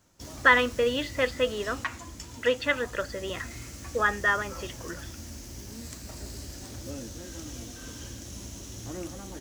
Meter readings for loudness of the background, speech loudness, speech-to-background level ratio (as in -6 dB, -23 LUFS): -40.5 LUFS, -26.5 LUFS, 14.0 dB